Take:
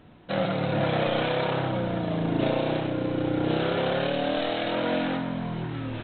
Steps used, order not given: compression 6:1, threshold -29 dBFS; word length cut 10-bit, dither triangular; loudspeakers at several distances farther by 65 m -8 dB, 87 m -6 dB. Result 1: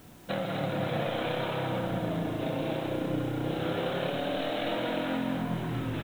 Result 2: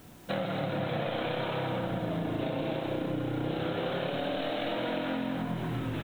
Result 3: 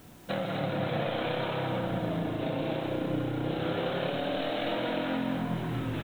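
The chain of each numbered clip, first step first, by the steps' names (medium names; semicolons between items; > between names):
compression > word length cut > loudspeakers at several distances; word length cut > loudspeakers at several distances > compression; word length cut > compression > loudspeakers at several distances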